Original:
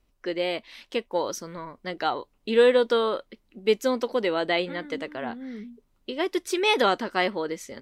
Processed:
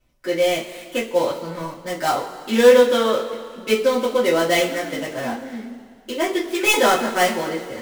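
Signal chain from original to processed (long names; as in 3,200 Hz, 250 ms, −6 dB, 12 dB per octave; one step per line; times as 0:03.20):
gap after every zero crossing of 0.086 ms
coupled-rooms reverb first 0.24 s, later 2.2 s, from −19 dB, DRR −9 dB
level −2.5 dB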